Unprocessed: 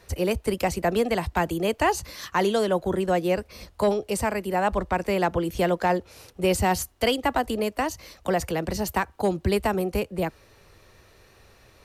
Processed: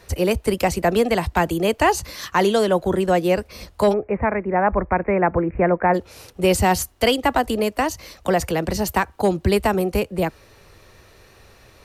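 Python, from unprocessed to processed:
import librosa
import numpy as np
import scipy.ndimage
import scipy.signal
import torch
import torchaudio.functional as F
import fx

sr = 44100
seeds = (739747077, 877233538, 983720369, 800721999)

y = fx.steep_lowpass(x, sr, hz=2400.0, slope=96, at=(3.92, 5.93), fade=0.02)
y = F.gain(torch.from_numpy(y), 5.0).numpy()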